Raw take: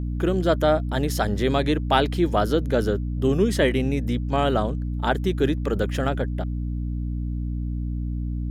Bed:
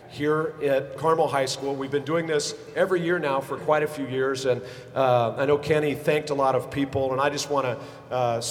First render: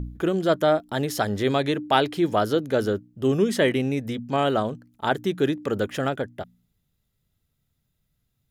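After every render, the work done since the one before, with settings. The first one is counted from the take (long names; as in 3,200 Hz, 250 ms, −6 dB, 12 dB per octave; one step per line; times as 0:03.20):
hum removal 60 Hz, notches 5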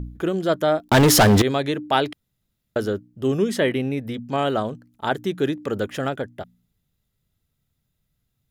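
0:00.88–0:01.42: leveller curve on the samples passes 5
0:02.13–0:02.76: fill with room tone
0:03.60–0:04.14: parametric band 6,800 Hz −13.5 dB 0.52 octaves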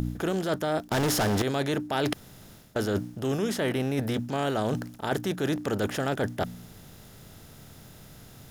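compressor on every frequency bin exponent 0.6
reversed playback
downward compressor, threshold −25 dBFS, peak gain reduction 14 dB
reversed playback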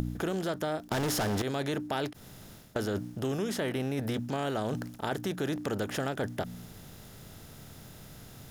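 downward compressor, threshold −28 dBFS, peak gain reduction 6.5 dB
every ending faded ahead of time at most 240 dB per second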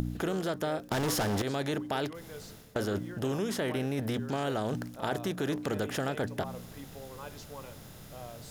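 mix in bed −22 dB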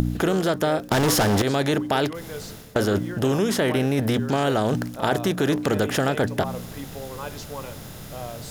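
level +10 dB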